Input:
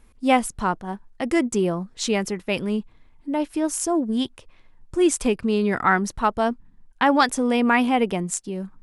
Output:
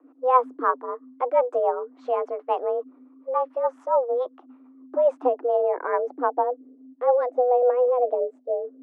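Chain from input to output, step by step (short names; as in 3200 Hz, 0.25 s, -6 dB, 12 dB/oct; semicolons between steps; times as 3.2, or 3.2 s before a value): low-pass sweep 820 Hz -> 390 Hz, 4.78–7.41; frequency shift +250 Hz; rotary speaker horn 7 Hz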